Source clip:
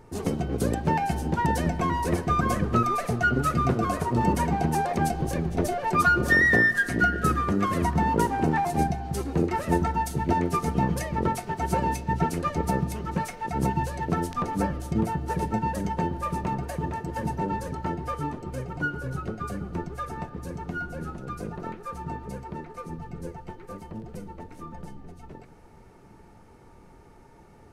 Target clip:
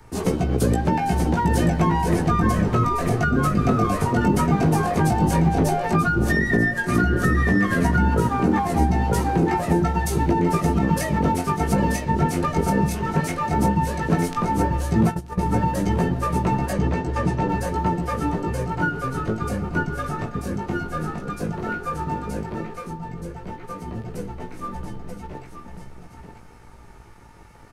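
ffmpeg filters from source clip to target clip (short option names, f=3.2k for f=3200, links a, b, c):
-filter_complex "[0:a]aecho=1:1:935:0.531,flanger=delay=16:depth=3.8:speed=0.12,acrossover=split=380[a][b];[b]acompressor=threshold=-31dB:ratio=10[c];[a][c]amix=inputs=2:normalize=0,acrossover=split=120|1000|2400[d][e][f][g];[e]aeval=exprs='sgn(val(0))*max(abs(val(0))-0.00106,0)':c=same[h];[d][h][f][g]amix=inputs=4:normalize=0,asplit=3[i][j][k];[i]afade=t=out:st=15.03:d=0.02[l];[j]agate=range=-15dB:threshold=-28dB:ratio=16:detection=peak,afade=t=in:st=15.03:d=0.02,afade=t=out:st=15.45:d=0.02[m];[k]afade=t=in:st=15.45:d=0.02[n];[l][m][n]amix=inputs=3:normalize=0,asettb=1/sr,asplit=3[o][p][q];[o]atrim=end=16.734[r];[p]atrim=start=16.73:end=17.49,asetpts=PTS-STARTPTS,afade=t=in:d=0.004:c=qsin,afade=t=out:st=0.756:d=0.004:c=qsin,lowpass=7k[s];[q]atrim=start=17.486[t];[r][s]acrossfade=d=0.004:c1=hsin:c2=qsin[u];[u][t]acrossfade=d=0.004:c1=qsin:c2=hsin,asettb=1/sr,asplit=3[v][w][x];[v]atrim=end=22.714[y];[w]atrim=start=22.71:end=23.88,asetpts=PTS-STARTPTS,afade=t=in:d=0.004:c=qsin,afade=t=out:st=1.166:d=0.004:c=qsin,acompressor=threshold=-39dB:ratio=6[z];[x]atrim=start=23.876[aa];[y][z]acrossfade=d=0.004:c1=hsin:c2=qsin[ab];[ab][aa]acrossfade=d=0.004:c1=qsin:c2=hsin,alimiter=level_in=18.5dB:limit=-1dB:release=50:level=0:latency=1,volume=-8.5dB"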